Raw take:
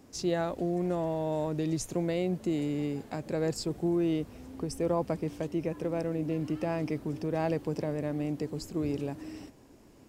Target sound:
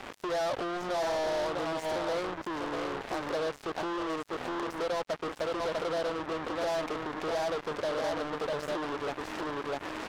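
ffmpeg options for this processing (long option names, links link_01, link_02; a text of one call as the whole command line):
ffmpeg -i in.wav -filter_complex "[0:a]asplit=2[link_01][link_02];[link_02]aecho=0:1:649:0.447[link_03];[link_01][link_03]amix=inputs=2:normalize=0,acompressor=threshold=-42dB:ratio=6,asplit=2[link_04][link_05];[link_05]highpass=frequency=720:poles=1,volume=29dB,asoftclip=type=tanh:threshold=-31.5dB[link_06];[link_04][link_06]amix=inputs=2:normalize=0,lowpass=frequency=3000:poles=1,volume=-6dB,acrossover=split=450 2100:gain=0.224 1 0.178[link_07][link_08][link_09];[link_07][link_08][link_09]amix=inputs=3:normalize=0,acrusher=bits=6:mix=0:aa=0.5,volume=9dB" out.wav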